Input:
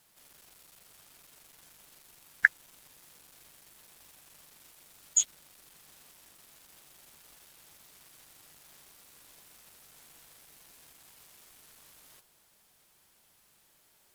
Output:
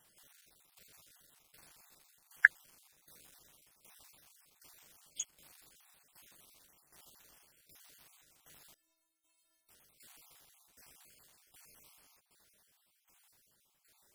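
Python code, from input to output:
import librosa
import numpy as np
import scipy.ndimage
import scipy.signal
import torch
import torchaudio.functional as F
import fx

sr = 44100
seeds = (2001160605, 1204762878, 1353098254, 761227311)

y = fx.spec_dropout(x, sr, seeds[0], share_pct=36)
y = fx.tremolo_shape(y, sr, shape='saw_down', hz=1.3, depth_pct=75)
y = fx.stiff_resonator(y, sr, f0_hz=320.0, decay_s=0.48, stiffness=0.008, at=(8.74, 9.69))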